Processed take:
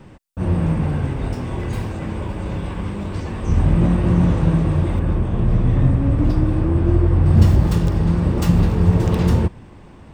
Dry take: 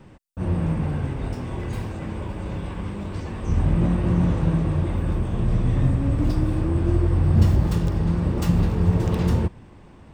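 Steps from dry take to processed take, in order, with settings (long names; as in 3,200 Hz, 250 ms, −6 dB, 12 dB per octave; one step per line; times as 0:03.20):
0:04.99–0:07.26: high-shelf EQ 4,100 Hz −10 dB
level +4.5 dB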